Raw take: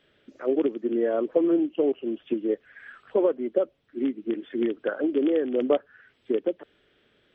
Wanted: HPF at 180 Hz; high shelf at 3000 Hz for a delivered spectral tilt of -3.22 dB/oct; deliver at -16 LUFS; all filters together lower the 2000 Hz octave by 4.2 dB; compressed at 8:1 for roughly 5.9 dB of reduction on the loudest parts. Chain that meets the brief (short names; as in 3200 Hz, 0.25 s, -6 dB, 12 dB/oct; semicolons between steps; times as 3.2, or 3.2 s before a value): HPF 180 Hz; bell 2000 Hz -8 dB; high shelf 3000 Hz +5.5 dB; compressor 8:1, threshold -23 dBFS; gain +14 dB